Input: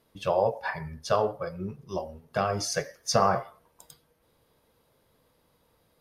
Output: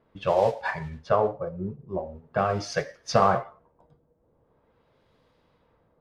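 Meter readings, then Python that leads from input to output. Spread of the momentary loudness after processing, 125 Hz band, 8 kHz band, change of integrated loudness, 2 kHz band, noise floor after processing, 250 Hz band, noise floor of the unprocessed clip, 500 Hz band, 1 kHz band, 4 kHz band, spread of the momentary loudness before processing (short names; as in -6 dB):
12 LU, +2.5 dB, -7.5 dB, +2.0 dB, +2.0 dB, -68 dBFS, +2.5 dB, -69 dBFS, +2.5 dB, +2.5 dB, -3.5 dB, 12 LU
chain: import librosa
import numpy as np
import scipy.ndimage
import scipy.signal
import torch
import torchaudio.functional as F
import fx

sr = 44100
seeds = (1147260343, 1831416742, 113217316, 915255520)

y = fx.mod_noise(x, sr, seeds[0], snr_db=18)
y = fx.filter_lfo_lowpass(y, sr, shape='sine', hz=0.43, low_hz=600.0, high_hz=4200.0, q=0.77)
y = y * librosa.db_to_amplitude(2.5)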